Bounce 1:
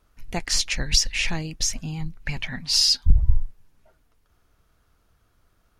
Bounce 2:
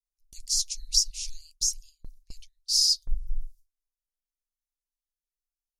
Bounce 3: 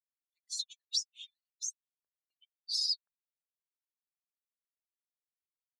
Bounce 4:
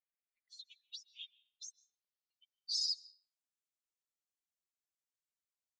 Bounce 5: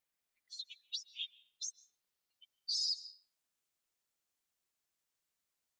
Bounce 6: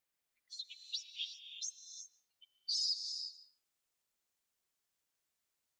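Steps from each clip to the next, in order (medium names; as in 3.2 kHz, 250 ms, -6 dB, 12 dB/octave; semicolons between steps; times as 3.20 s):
inverse Chebyshev band-stop 140–1300 Hz, stop band 70 dB; bass shelf 400 Hz -8.5 dB; gate with hold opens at -32 dBFS
expander on every frequency bin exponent 3; compression 2:1, threshold -29 dBFS, peak gain reduction 6 dB; ladder band-pass 3.9 kHz, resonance 70%; trim +8.5 dB
peak limiter -25.5 dBFS, peak gain reduction 6.5 dB; low-pass sweep 2.2 kHz -> 7.4 kHz, 0.53–3.05 s; on a send at -20.5 dB: reverberation RT60 0.70 s, pre-delay 100 ms; on the sum: trim -6 dB
peak limiter -35 dBFS, peak gain reduction 9 dB; trim +7.5 dB
gated-style reverb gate 390 ms rising, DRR 6.5 dB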